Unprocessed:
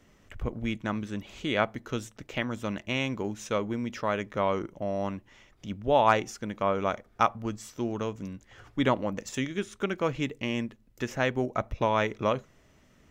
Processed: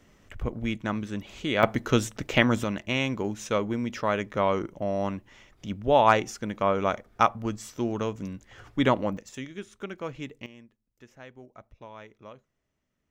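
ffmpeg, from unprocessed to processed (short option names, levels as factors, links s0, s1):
-af "asetnsamples=n=441:p=0,asendcmd='1.63 volume volume 10dB;2.64 volume volume 2.5dB;9.17 volume volume -7dB;10.46 volume volume -19.5dB',volume=1.19"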